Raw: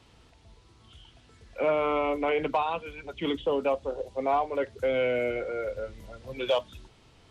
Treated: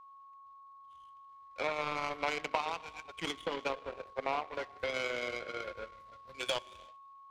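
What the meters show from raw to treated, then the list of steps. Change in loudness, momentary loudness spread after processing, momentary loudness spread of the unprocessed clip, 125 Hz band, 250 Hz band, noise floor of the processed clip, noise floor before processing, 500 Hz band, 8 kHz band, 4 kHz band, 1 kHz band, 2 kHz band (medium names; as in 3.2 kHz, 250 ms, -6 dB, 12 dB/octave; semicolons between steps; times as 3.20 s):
-8.0 dB, 20 LU, 11 LU, -10.0 dB, -12.5 dB, -55 dBFS, -58 dBFS, -12.0 dB, no reading, -1.0 dB, -7.0 dB, -2.0 dB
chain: ten-band graphic EQ 1 kHz +7 dB, 2 kHz +8 dB, 4 kHz +9 dB; compression 3:1, threshold -25 dBFS, peak gain reduction 8 dB; gated-style reverb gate 400 ms flat, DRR 8 dB; power-law waveshaper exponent 2; whistle 1.1 kHz -52 dBFS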